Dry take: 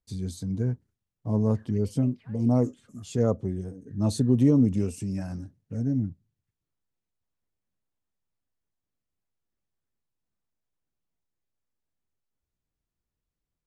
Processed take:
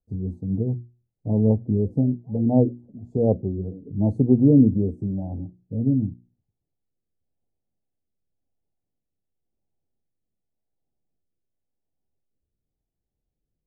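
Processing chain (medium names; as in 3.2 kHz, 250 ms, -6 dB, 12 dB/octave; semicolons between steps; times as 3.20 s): elliptic low-pass 820 Hz, stop band 40 dB; hum notches 60/120/180/240/300/360 Hz; rotary cabinet horn 5 Hz, later 0.9 Hz, at 2.42 s; trim +7 dB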